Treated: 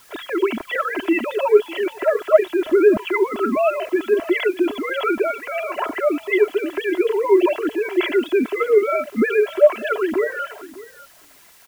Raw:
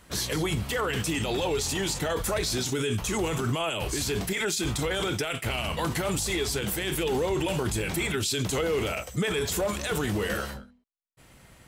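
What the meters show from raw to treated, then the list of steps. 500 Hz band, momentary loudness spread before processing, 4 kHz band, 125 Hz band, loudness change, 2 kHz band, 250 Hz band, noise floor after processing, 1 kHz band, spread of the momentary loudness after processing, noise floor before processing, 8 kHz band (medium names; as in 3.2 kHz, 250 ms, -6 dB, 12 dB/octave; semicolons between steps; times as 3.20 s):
+13.0 dB, 2 LU, -4.5 dB, under -15 dB, +8.5 dB, +6.5 dB, +8.5 dB, -49 dBFS, +8.0 dB, 8 LU, -55 dBFS, under -15 dB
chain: formants replaced by sine waves; low-pass 2.4 kHz 6 dB/octave; comb 3 ms, depth 100%; in parallel at -6 dB: word length cut 8-bit, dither triangular; on the sum: delay 600 ms -18 dB; trim +3.5 dB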